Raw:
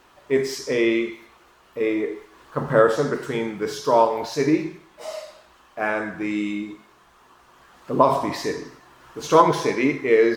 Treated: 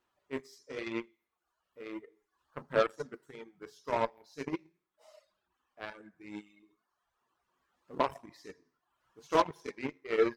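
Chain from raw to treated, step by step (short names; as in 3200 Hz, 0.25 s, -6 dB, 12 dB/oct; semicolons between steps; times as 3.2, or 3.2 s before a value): flange 0.97 Hz, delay 8.2 ms, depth 4.4 ms, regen +51%; added harmonics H 7 -19 dB, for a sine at -6 dBFS; reverb removal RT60 0.78 s; gain -7.5 dB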